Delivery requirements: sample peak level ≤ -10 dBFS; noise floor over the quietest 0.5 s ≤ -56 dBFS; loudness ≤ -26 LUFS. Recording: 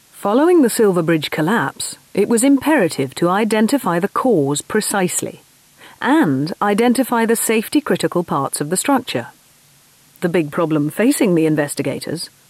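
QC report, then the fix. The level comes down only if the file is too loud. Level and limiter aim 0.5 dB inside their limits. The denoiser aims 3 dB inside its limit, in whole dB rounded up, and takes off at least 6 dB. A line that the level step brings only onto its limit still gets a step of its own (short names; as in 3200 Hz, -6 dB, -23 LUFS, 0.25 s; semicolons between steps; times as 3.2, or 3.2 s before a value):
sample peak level -5.5 dBFS: fail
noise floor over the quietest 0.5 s -51 dBFS: fail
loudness -17.0 LUFS: fail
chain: gain -9.5 dB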